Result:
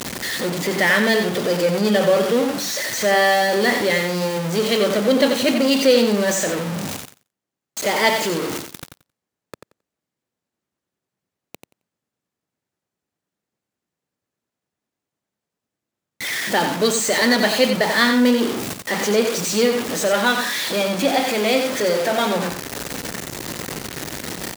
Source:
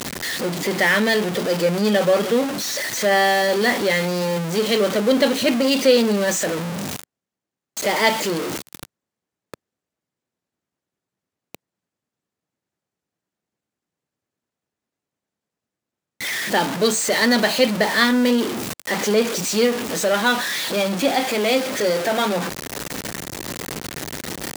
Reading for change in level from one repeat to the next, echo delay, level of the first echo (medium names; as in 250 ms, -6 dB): -16.5 dB, 89 ms, -7.0 dB